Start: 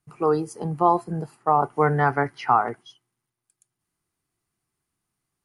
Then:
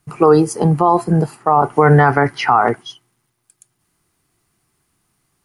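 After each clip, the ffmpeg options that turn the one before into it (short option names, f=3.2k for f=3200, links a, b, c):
-af "alimiter=level_in=15.5dB:limit=-1dB:release=50:level=0:latency=1,volume=-1dB"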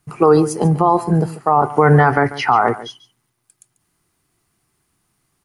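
-af "aecho=1:1:142:0.158,volume=-1dB"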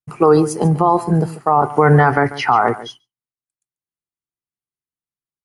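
-af "agate=range=-33dB:threshold=-33dB:ratio=3:detection=peak"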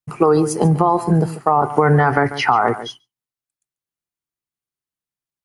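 -af "acompressor=threshold=-12dB:ratio=6,volume=2dB"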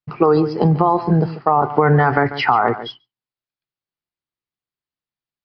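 -af "aresample=11025,aresample=44100"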